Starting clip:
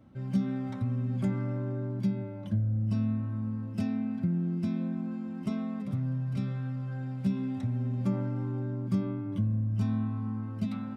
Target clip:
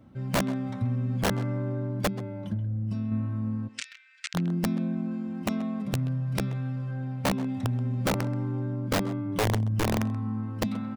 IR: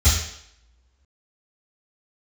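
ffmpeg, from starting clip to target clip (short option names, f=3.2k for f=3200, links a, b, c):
-filter_complex "[0:a]asettb=1/sr,asplit=3[a][b][c];[a]atrim=end=2.074[d];[b]atrim=start=2.07:end=3.12,asetpts=PTS-STARTPTS,afade=t=in:d=0.004:c=qsin,afade=t=out:st=1.046:d=0.004:c=qsin,acompressor=threshold=-30dB:ratio=6[e];[c]atrim=start=3.116[f];[d][e]acrossfade=d=0.004:c1=hsin:c2=qsin[g];[g][f]acrossfade=d=0.004:c1=qsin:c2=hsin,asettb=1/sr,asplit=3[h][i][j];[h]atrim=end=6.914[k];[i]atrim=start=6.91:end=7.49,asetpts=PTS-STARTPTS,afade=t=in:d=0.004:c=qsin,afade=t=out:st=0.576:d=0.004:c=qsin,highshelf=f=4.2k:g=-7[l];[j]atrim=start=7.486[m];[k][l]acrossfade=d=0.004:c1=hsin:c2=qsin[n];[n][m]acrossfade=d=0.004:c1=qsin:c2=hsin,aeval=exprs='(mod(13.3*val(0)+1,2)-1)/13.3':c=same,asplit=3[o][p][q];[o]afade=t=out:st=3.67:d=0.02[r];[p]asuperpass=centerf=3900:order=12:qfactor=0.55,afade=t=in:st=3.67:d=0.02,afade=t=out:st=4.34:d=0.02[s];[q]afade=t=in:st=4.34:d=0.02[t];[r][s][t]amix=inputs=3:normalize=0,asplit=2[u][v];[v]adelay=130,highpass=300,lowpass=3.4k,asoftclip=type=hard:threshold=-27dB,volume=-11dB[w];[u][w]amix=inputs=2:normalize=0,volume=3dB"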